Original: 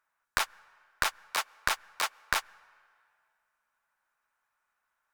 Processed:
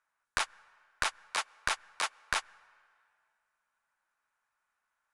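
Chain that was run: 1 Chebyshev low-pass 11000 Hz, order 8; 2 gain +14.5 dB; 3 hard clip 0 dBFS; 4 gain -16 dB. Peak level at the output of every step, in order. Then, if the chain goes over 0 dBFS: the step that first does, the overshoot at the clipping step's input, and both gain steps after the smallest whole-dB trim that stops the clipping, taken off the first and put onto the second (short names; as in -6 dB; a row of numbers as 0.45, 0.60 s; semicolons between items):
-8.0, +6.5, 0.0, -16.0 dBFS; step 2, 6.5 dB; step 2 +7.5 dB, step 4 -9 dB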